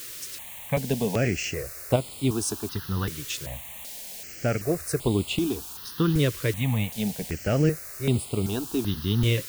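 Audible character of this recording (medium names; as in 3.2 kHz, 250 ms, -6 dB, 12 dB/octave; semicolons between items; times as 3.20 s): tremolo saw up 0.51 Hz, depth 40%; a quantiser's noise floor 8-bit, dither triangular; notches that jump at a steady rate 2.6 Hz 210–5900 Hz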